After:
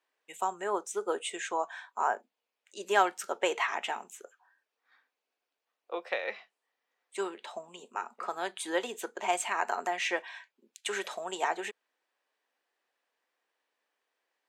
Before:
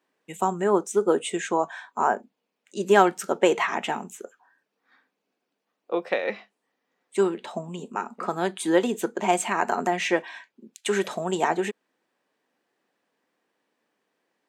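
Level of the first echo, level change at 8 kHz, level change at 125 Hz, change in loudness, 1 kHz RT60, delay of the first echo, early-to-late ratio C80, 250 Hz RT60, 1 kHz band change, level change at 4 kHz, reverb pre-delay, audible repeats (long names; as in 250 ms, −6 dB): no echo audible, −5.0 dB, below −20 dB, −8.0 dB, no reverb audible, no echo audible, no reverb audible, no reverb audible, −6.5 dB, −3.5 dB, no reverb audible, no echo audible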